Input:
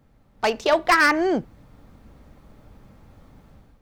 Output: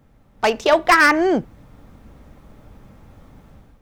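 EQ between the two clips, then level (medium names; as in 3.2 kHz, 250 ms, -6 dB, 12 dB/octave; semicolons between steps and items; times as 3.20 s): peaking EQ 4.4 kHz -4 dB 0.23 oct; +4.0 dB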